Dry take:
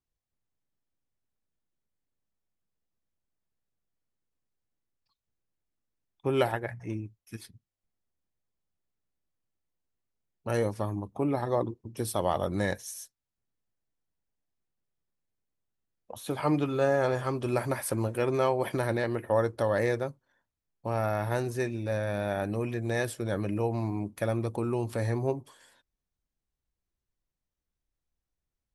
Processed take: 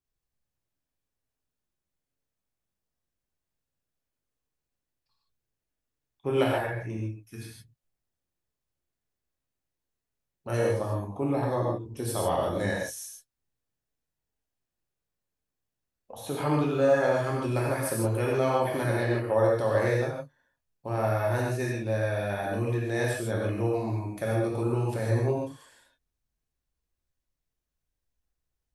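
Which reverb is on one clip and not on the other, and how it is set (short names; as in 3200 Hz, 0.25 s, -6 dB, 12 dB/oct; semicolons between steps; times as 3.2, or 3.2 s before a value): non-linear reverb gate 0.18 s flat, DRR -3.5 dB; gain -3 dB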